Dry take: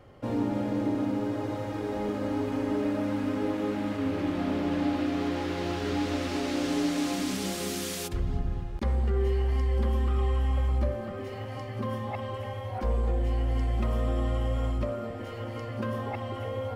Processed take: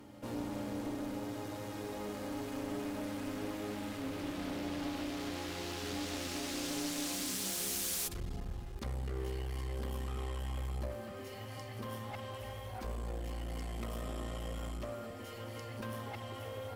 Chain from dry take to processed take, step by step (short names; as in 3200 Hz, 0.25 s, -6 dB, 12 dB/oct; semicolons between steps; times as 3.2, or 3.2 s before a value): pre-emphasis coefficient 0.8; reverse echo 0.425 s -17 dB; one-sided clip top -47 dBFS; gain +5 dB